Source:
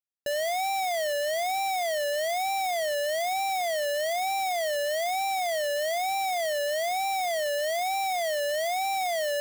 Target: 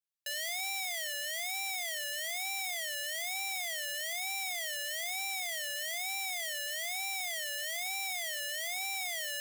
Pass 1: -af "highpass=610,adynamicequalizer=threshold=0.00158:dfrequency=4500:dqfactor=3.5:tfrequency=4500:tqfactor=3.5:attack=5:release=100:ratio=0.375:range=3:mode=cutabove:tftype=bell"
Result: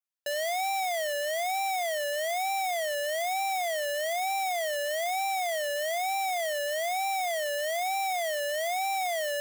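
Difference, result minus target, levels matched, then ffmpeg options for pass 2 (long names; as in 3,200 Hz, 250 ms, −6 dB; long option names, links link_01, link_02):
500 Hz band +12.5 dB
-af "highpass=2000,adynamicequalizer=threshold=0.00158:dfrequency=4500:dqfactor=3.5:tfrequency=4500:tqfactor=3.5:attack=5:release=100:ratio=0.375:range=3:mode=cutabove:tftype=bell"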